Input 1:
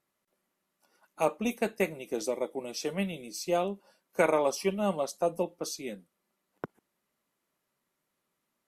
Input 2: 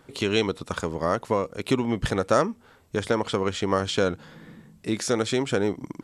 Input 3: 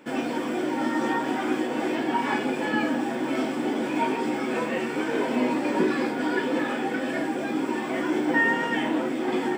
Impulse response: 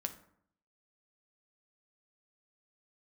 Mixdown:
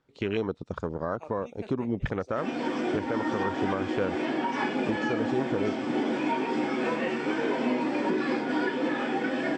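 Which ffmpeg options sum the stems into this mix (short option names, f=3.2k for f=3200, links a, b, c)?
-filter_complex "[0:a]volume=-8dB,asplit=2[a][b];[b]volume=-22.5dB[c];[1:a]afwtdn=0.0355,volume=-2dB,asplit=2[d][e];[2:a]adelay=2300,volume=-1dB[f];[e]apad=whole_len=382807[g];[a][g]sidechaincompress=threshold=-28dB:ratio=8:attack=12:release=1360[h];[c]aecho=0:1:200:1[i];[h][d][f][i]amix=inputs=4:normalize=0,lowpass=f=6.4k:w=0.5412,lowpass=f=6.4k:w=1.3066,alimiter=limit=-17.5dB:level=0:latency=1:release=245"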